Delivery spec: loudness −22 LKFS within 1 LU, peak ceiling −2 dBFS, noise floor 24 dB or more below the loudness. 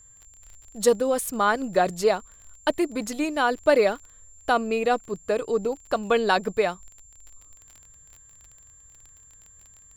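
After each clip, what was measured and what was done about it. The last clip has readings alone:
crackle rate 26 per second; interfering tone 7,300 Hz; level of the tone −50 dBFS; integrated loudness −24.5 LKFS; sample peak −6.5 dBFS; target loudness −22.0 LKFS
→ click removal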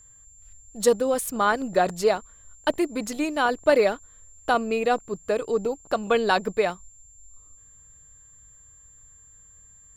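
crackle rate 0.50 per second; interfering tone 7,300 Hz; level of the tone −50 dBFS
→ notch filter 7,300 Hz, Q 30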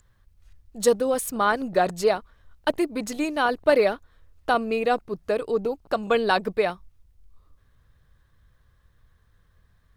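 interfering tone none found; integrated loudness −24.5 LKFS; sample peak −6.5 dBFS; target loudness −22.0 LKFS
→ level +2.5 dB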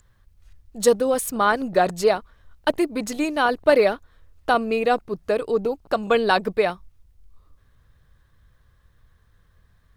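integrated loudness −22.0 LKFS; sample peak −4.0 dBFS; background noise floor −60 dBFS

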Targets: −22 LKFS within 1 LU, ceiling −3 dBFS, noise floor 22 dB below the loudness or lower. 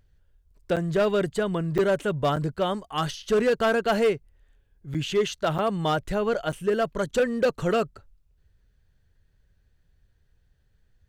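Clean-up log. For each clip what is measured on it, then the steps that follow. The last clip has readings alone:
share of clipped samples 1.5%; peaks flattened at −16.5 dBFS; number of dropouts 6; longest dropout 6.9 ms; integrated loudness −25.5 LKFS; sample peak −16.5 dBFS; target loudness −22.0 LKFS
→ clipped peaks rebuilt −16.5 dBFS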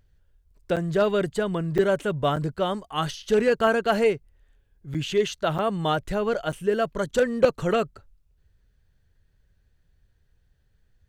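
share of clipped samples 0.0%; number of dropouts 6; longest dropout 6.9 ms
→ repair the gap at 0:00.76/0:01.78/0:02.36/0:04.94/0:05.58/0:06.52, 6.9 ms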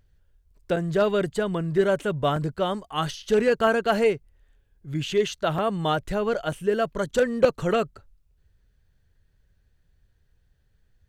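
number of dropouts 0; integrated loudness −25.0 LKFS; sample peak −7.5 dBFS; target loudness −22.0 LKFS
→ level +3 dB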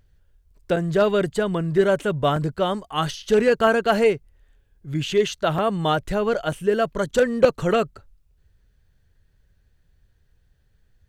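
integrated loudness −22.0 LKFS; sample peak −4.5 dBFS; background noise floor −63 dBFS

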